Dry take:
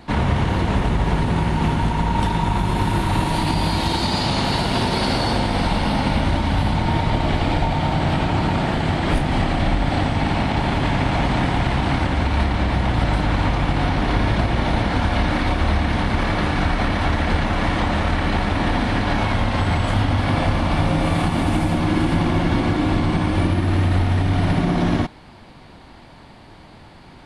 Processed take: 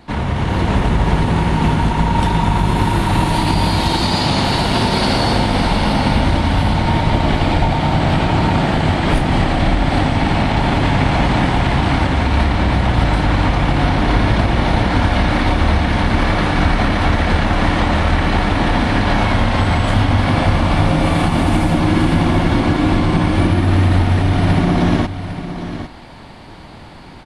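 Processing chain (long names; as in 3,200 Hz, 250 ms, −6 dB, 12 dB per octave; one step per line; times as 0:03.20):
automatic gain control gain up to 7.5 dB
on a send: single-tap delay 803 ms −11 dB
on the sum: level −1 dB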